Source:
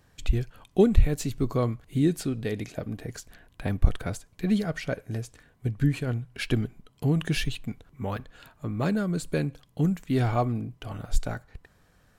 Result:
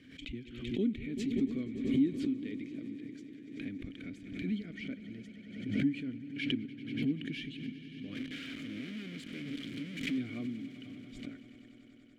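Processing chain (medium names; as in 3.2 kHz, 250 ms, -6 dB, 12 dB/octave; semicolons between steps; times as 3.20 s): 8.15–10.18 s: one-bit comparator; wow and flutter 17 cents; vowel filter i; on a send: echo with a slow build-up 96 ms, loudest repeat 5, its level -18 dB; on the sum: swell ahead of each attack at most 61 dB/s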